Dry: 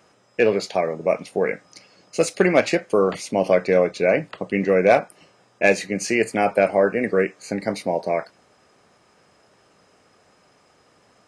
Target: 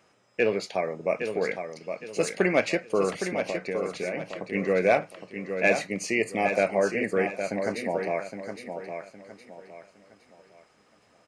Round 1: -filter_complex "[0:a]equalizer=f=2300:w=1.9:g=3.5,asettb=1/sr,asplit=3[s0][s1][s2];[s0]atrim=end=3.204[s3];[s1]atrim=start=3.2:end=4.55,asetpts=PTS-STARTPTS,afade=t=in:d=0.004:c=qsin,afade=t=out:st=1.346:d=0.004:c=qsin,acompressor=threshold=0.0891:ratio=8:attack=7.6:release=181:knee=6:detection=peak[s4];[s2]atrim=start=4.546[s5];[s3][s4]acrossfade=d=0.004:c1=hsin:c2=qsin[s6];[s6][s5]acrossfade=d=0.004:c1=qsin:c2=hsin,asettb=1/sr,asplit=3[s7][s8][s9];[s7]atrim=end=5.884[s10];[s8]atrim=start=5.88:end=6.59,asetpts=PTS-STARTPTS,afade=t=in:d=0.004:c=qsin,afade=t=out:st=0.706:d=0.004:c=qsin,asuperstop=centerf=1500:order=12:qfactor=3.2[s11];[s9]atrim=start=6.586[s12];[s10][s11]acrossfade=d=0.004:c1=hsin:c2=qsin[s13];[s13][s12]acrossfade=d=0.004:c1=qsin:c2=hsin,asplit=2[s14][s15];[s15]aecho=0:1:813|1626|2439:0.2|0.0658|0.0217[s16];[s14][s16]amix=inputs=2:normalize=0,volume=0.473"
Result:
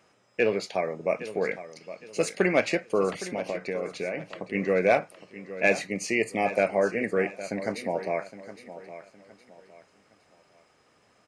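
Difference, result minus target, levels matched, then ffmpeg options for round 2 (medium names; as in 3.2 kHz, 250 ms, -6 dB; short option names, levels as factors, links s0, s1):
echo-to-direct -6.5 dB
-filter_complex "[0:a]equalizer=f=2300:w=1.9:g=3.5,asettb=1/sr,asplit=3[s0][s1][s2];[s0]atrim=end=3.204[s3];[s1]atrim=start=3.2:end=4.55,asetpts=PTS-STARTPTS,afade=t=in:d=0.004:c=qsin,afade=t=out:st=1.346:d=0.004:c=qsin,acompressor=threshold=0.0891:ratio=8:attack=7.6:release=181:knee=6:detection=peak[s4];[s2]atrim=start=4.546[s5];[s3][s4]acrossfade=d=0.004:c1=hsin:c2=qsin[s6];[s6][s5]acrossfade=d=0.004:c1=qsin:c2=hsin,asettb=1/sr,asplit=3[s7][s8][s9];[s7]atrim=end=5.884[s10];[s8]atrim=start=5.88:end=6.59,asetpts=PTS-STARTPTS,afade=t=in:d=0.004:c=qsin,afade=t=out:st=0.706:d=0.004:c=qsin,asuperstop=centerf=1500:order=12:qfactor=3.2[s11];[s9]atrim=start=6.586[s12];[s10][s11]acrossfade=d=0.004:c1=hsin:c2=qsin[s13];[s13][s12]acrossfade=d=0.004:c1=qsin:c2=hsin,asplit=2[s14][s15];[s15]aecho=0:1:813|1626|2439|3252:0.422|0.139|0.0459|0.0152[s16];[s14][s16]amix=inputs=2:normalize=0,volume=0.473"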